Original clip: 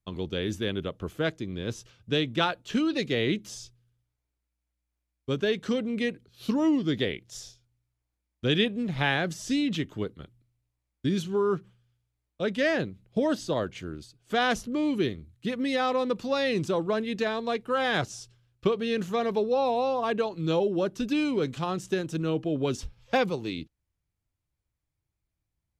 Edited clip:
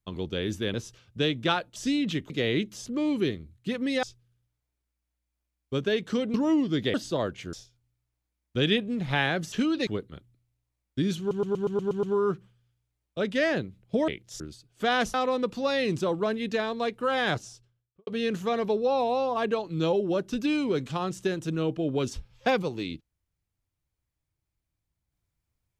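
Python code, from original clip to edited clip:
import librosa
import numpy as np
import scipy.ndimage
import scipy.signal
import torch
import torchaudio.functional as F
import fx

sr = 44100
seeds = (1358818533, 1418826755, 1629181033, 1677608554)

y = fx.studio_fade_out(x, sr, start_s=17.93, length_s=0.81)
y = fx.edit(y, sr, fx.cut(start_s=0.74, length_s=0.92),
    fx.swap(start_s=2.68, length_s=0.35, other_s=9.4, other_length_s=0.54),
    fx.cut(start_s=5.9, length_s=0.59),
    fx.swap(start_s=7.09, length_s=0.32, other_s=13.31, other_length_s=0.59),
    fx.stutter(start_s=11.26, slice_s=0.12, count=8),
    fx.move(start_s=14.64, length_s=1.17, to_s=3.59), tone=tone)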